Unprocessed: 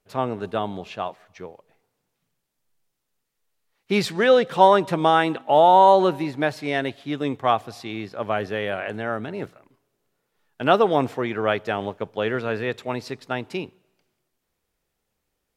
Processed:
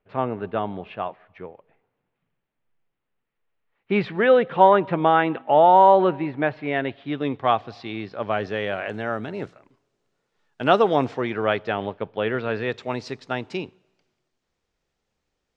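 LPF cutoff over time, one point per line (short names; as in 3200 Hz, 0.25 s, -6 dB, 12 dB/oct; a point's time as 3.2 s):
LPF 24 dB/oct
6.68 s 2800 Hz
7.46 s 4400 Hz
7.99 s 4400 Hz
8.87 s 7500 Hz
10.73 s 7500 Hz
12.22 s 3500 Hz
12.9 s 7000 Hz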